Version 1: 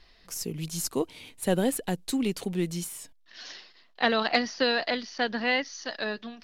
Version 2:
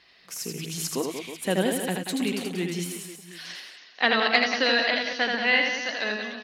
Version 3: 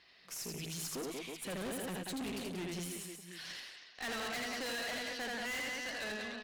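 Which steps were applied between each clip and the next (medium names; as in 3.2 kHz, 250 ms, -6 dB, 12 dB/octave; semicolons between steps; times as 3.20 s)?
high-pass 130 Hz 12 dB/octave; peaking EQ 2.3 kHz +7 dB 1.6 oct; reverse bouncing-ball echo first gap 80 ms, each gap 1.3×, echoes 5; trim -1.5 dB
valve stage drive 33 dB, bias 0.4; trim -4.5 dB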